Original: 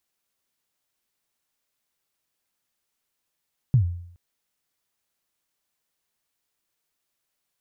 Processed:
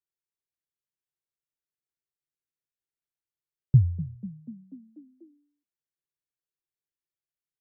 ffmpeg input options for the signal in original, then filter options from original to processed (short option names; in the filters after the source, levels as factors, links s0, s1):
-f lavfi -i "aevalsrc='0.266*pow(10,-3*t/0.66)*sin(2*PI*(140*0.098/log(87/140)*(exp(log(87/140)*min(t,0.098)/0.098)-1)+87*max(t-0.098,0)))':d=0.42:s=44100"
-filter_complex "[0:a]afftdn=nr=14:nf=-50,firequalizer=gain_entry='entry(100,0);entry(150,6);entry(210,-13);entry(360,3);entry(770,-18);entry(1500,-4);entry(2500,-8)':delay=0.05:min_phase=1,asplit=7[s0][s1][s2][s3][s4][s5][s6];[s1]adelay=244,afreqshift=34,volume=0.158[s7];[s2]adelay=488,afreqshift=68,volume=0.1[s8];[s3]adelay=732,afreqshift=102,volume=0.0631[s9];[s4]adelay=976,afreqshift=136,volume=0.0398[s10];[s5]adelay=1220,afreqshift=170,volume=0.0248[s11];[s6]adelay=1464,afreqshift=204,volume=0.0157[s12];[s0][s7][s8][s9][s10][s11][s12]amix=inputs=7:normalize=0"